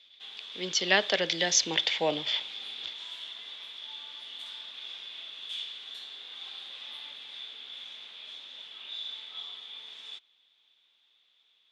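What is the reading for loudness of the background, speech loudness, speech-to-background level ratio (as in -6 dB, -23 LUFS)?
-40.0 LUFS, -27.0 LUFS, 13.0 dB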